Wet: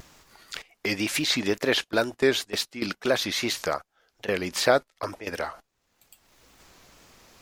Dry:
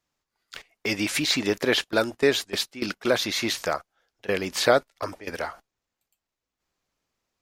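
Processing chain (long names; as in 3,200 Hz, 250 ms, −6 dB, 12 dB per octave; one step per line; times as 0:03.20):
in parallel at +2.5 dB: upward compression, threshold −23 dBFS
on the sum: tape wow and flutter 76 cents
level −8.5 dB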